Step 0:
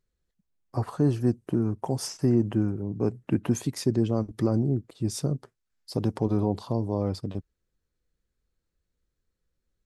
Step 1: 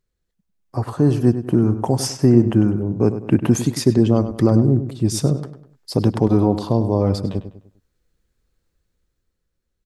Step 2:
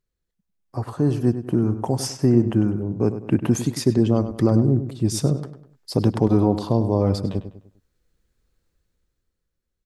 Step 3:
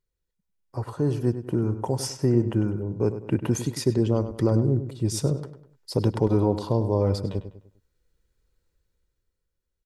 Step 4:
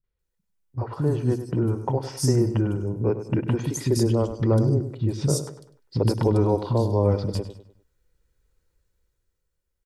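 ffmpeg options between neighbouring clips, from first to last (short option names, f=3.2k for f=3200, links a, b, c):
-filter_complex "[0:a]dynaudnorm=f=150:g=13:m=7dB,asplit=2[a][b];[b]adelay=100,lowpass=f=3.8k:p=1,volume=-11dB,asplit=2[c][d];[d]adelay=100,lowpass=f=3.8k:p=1,volume=0.39,asplit=2[e][f];[f]adelay=100,lowpass=f=3.8k:p=1,volume=0.39,asplit=2[g][h];[h]adelay=100,lowpass=f=3.8k:p=1,volume=0.39[i];[c][e][g][i]amix=inputs=4:normalize=0[j];[a][j]amix=inputs=2:normalize=0,volume=2.5dB"
-af "dynaudnorm=f=250:g=11:m=11.5dB,volume=-4.5dB"
-af "aecho=1:1:2.1:0.34,volume=-3.5dB"
-filter_complex "[0:a]acrossover=split=260|4000[a][b][c];[b]adelay=40[d];[c]adelay=190[e];[a][d][e]amix=inputs=3:normalize=0,volume=2.5dB"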